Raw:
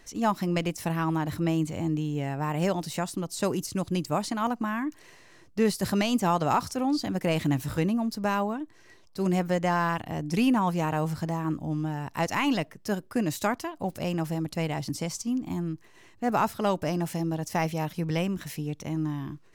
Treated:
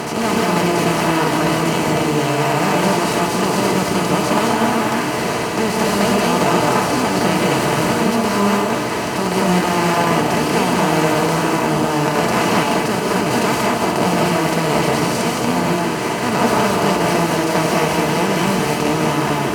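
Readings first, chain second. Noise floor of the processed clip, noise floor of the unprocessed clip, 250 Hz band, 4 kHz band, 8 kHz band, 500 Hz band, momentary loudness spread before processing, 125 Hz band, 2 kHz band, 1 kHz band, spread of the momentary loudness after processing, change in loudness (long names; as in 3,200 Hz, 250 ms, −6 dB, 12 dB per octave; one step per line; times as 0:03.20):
−20 dBFS, −55 dBFS, +9.5 dB, +15.5 dB, +15.0 dB, +13.5 dB, 7 LU, +8.5 dB, +15.5 dB, +13.5 dB, 3 LU, +12.0 dB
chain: compressor on every frequency bin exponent 0.2
high-pass filter 63 Hz
notch comb filter 270 Hz
reverb whose tail is shaped and stops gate 250 ms rising, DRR −3 dB
level −1.5 dB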